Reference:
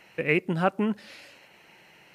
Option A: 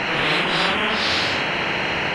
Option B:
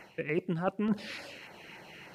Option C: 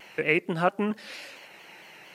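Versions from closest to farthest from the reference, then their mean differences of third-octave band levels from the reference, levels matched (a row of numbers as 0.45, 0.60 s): C, B, A; 4.0, 7.0, 16.5 dB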